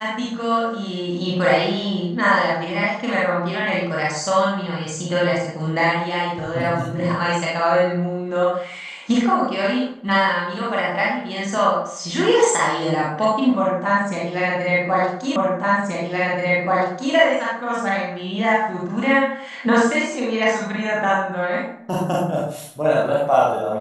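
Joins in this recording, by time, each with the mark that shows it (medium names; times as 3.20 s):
15.36 s: repeat of the last 1.78 s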